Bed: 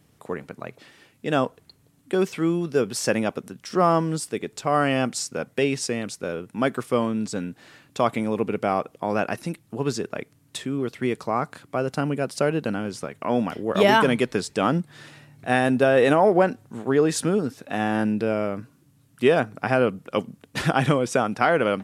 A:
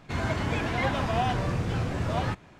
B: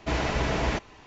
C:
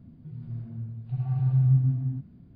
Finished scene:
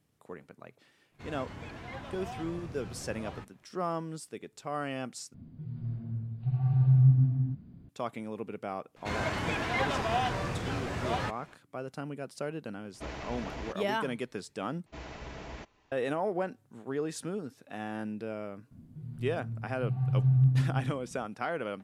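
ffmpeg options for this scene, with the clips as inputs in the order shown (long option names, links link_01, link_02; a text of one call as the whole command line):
ffmpeg -i bed.wav -i cue0.wav -i cue1.wav -i cue2.wav -filter_complex "[1:a]asplit=2[link_01][link_02];[3:a]asplit=2[link_03][link_04];[2:a]asplit=2[link_05][link_06];[0:a]volume=-14dB[link_07];[link_02]lowshelf=frequency=340:gain=-8[link_08];[link_05]asoftclip=type=tanh:threshold=-17dB[link_09];[link_07]asplit=3[link_10][link_11][link_12];[link_10]atrim=end=5.344[link_13];[link_03]atrim=end=2.55[link_14];[link_11]atrim=start=7.886:end=14.864[link_15];[link_06]atrim=end=1.06,asetpts=PTS-STARTPTS,volume=-17dB[link_16];[link_12]atrim=start=15.916[link_17];[link_01]atrim=end=2.59,asetpts=PTS-STARTPTS,volume=-15.5dB,afade=type=in:duration=0.05,afade=type=out:start_time=2.54:duration=0.05,adelay=1100[link_18];[link_08]atrim=end=2.59,asetpts=PTS-STARTPTS,volume=-0.5dB,afade=type=in:duration=0.004:curve=hsin,afade=type=out:start_time=2.586:duration=0.004:curve=hsin,adelay=8960[link_19];[link_09]atrim=end=1.06,asetpts=PTS-STARTPTS,volume=-13dB,afade=type=in:duration=0.004:curve=hsin,afade=type=out:start_time=1.056:duration=0.004:curve=hsin,adelay=12940[link_20];[link_04]atrim=end=2.55,asetpts=PTS-STARTPTS,volume=-2.5dB,afade=type=in:duration=0.004:curve=hsin,afade=type=out:start_time=2.546:duration=0.004:curve=hsin,adelay=18710[link_21];[link_13][link_14]acrossfade=duration=0.004:curve1=hsin:curve2=hsin[link_22];[link_22][link_15]acrossfade=duration=0.004:curve1=hsin:curve2=hsin[link_23];[link_23][link_16]acrossfade=duration=0.004:curve1=hsin:curve2=hsin[link_24];[link_24][link_17]acrossfade=duration=0.004:curve1=hsin:curve2=hsin[link_25];[link_25][link_18][link_19][link_20][link_21]amix=inputs=5:normalize=0" out.wav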